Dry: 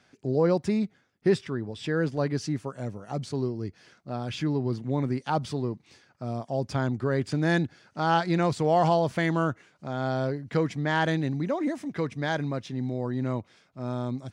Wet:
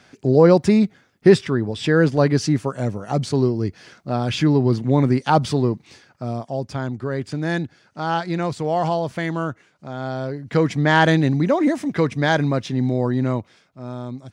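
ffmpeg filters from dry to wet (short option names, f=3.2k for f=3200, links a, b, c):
-af "volume=19.5dB,afade=t=out:st=5.65:d=1.05:silence=0.334965,afade=t=in:st=10.29:d=0.51:silence=0.354813,afade=t=out:st=13.01:d=0.8:silence=0.316228"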